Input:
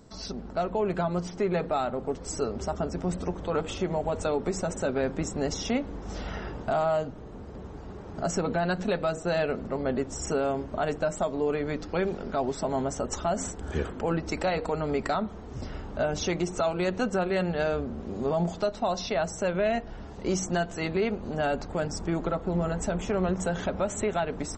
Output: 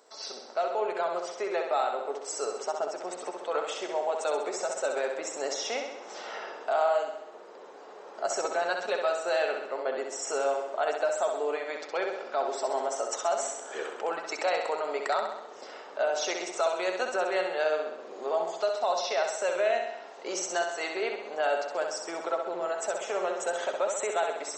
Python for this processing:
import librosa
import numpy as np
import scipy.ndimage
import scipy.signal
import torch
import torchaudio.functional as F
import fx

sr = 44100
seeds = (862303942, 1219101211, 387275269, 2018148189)

p1 = scipy.signal.sosfilt(scipy.signal.butter(4, 460.0, 'highpass', fs=sr, output='sos'), x)
y = p1 + fx.echo_feedback(p1, sr, ms=65, feedback_pct=58, wet_db=-5.5, dry=0)